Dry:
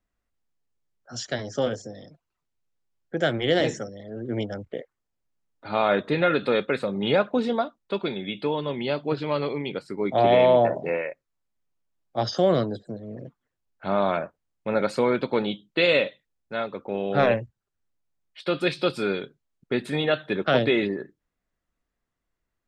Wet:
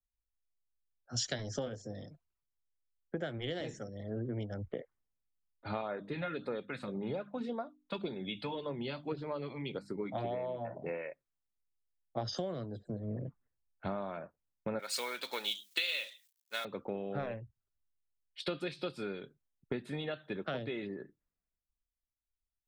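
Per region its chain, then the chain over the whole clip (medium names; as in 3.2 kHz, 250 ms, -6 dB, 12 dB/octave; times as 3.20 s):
5.81–10.76 s: hum notches 50/100/150/200/250/300 Hz + LFO notch sine 1.8 Hz 370–3200 Hz
14.79–16.65 s: companding laws mixed up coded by mu + high-pass 1 kHz 6 dB/octave + tilt EQ +3 dB/octave
whole clip: bass shelf 140 Hz +7.5 dB; compression 16:1, threshold -33 dBFS; three bands expanded up and down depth 70%; trim -1.5 dB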